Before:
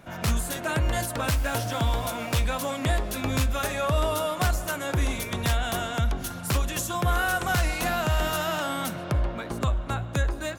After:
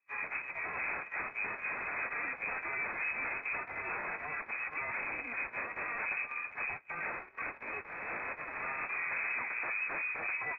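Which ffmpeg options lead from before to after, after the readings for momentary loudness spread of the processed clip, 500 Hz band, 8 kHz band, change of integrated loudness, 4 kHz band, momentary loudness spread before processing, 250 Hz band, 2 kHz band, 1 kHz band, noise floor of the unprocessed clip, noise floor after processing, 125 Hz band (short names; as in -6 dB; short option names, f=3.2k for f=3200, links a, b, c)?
5 LU, -17.5 dB, under -40 dB, -9.0 dB, under -40 dB, 4 LU, -22.0 dB, -2.0 dB, -11.0 dB, -36 dBFS, -52 dBFS, -33.0 dB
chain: -af "aeval=exprs='0.0299*(abs(mod(val(0)/0.0299+3,4)-2)-1)':c=same,aeval=exprs='val(0)+0.00355*(sin(2*PI*50*n/s)+sin(2*PI*2*50*n/s)/2+sin(2*PI*3*50*n/s)/3+sin(2*PI*4*50*n/s)/4+sin(2*PI*5*50*n/s)/5)':c=same,bandreject=f=105.3:t=h:w=4,bandreject=f=210.6:t=h:w=4,bandreject=f=315.9:t=h:w=4,bandreject=f=421.2:t=h:w=4,bandreject=f=526.5:t=h:w=4,bandreject=f=631.8:t=h:w=4,bandreject=f=737.1:t=h:w=4,bandreject=f=842.4:t=h:w=4,lowpass=f=2.2k:t=q:w=0.5098,lowpass=f=2.2k:t=q:w=0.6013,lowpass=f=2.2k:t=q:w=0.9,lowpass=f=2.2k:t=q:w=2.563,afreqshift=-2600,agate=range=-35dB:threshold=-37dB:ratio=16:detection=peak"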